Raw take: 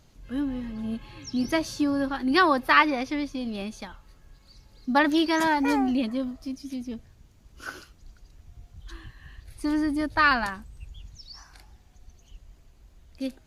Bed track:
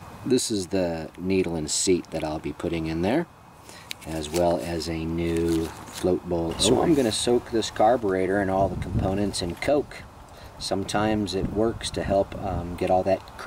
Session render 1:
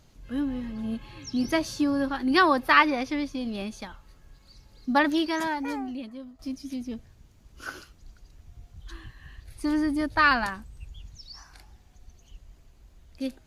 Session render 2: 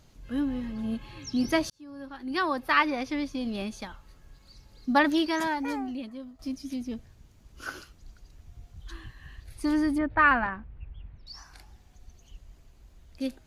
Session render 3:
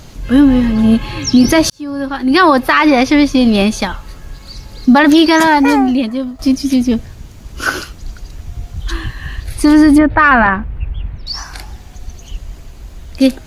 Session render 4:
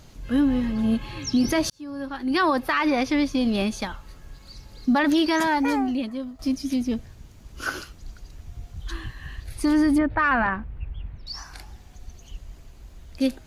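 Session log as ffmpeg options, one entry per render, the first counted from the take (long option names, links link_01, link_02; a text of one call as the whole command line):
ffmpeg -i in.wav -filter_complex "[0:a]asplit=2[link_01][link_02];[link_01]atrim=end=6.39,asetpts=PTS-STARTPTS,afade=type=out:start_time=4.9:duration=1.49:curve=qua:silence=0.237137[link_03];[link_02]atrim=start=6.39,asetpts=PTS-STARTPTS,afade=type=in:duration=0.004:curve=hsin:silence=0.237137[link_04];[link_03][link_04]concat=n=2:v=0:a=1" out.wav
ffmpeg -i in.wav -filter_complex "[0:a]asettb=1/sr,asplit=3[link_01][link_02][link_03];[link_01]atrim=end=9.984[link_04];[link_02]atrim=start=9.98:end=11.27,asetpts=PTS-STARTPTS,afade=type=in:duration=0.004:curve=qsin,afade=type=out:start_time=1.286:duration=0.004:curve=qsin,lowpass=frequency=2400:width=0.5412,lowpass=frequency=2400:width=1.3066[link_05];[link_03]atrim=start=11.266[link_06];[link_04][link_05]acrossfade=duration=0.004:curve1=hsin:curve2=qsin[link_07];[link_07][link_06]acrossfade=duration=0.004:curve1=qsin:curve2=hsin,asplit=2[link_08][link_09];[link_08]atrim=end=1.7,asetpts=PTS-STARTPTS,afade=type=out:start_time=1.696:duration=0.004:curve=hsin[link_10];[link_09]atrim=start=1.7,asetpts=PTS-STARTPTS,afade=type=in:duration=1.77[link_11];[link_10][link_11]concat=n=2:v=0:a=1" out.wav
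ffmpeg -i in.wav -af "acontrast=62,alimiter=level_in=15.5dB:limit=-1dB:release=50:level=0:latency=1" out.wav
ffmpeg -i in.wav -af "volume=-12.5dB" out.wav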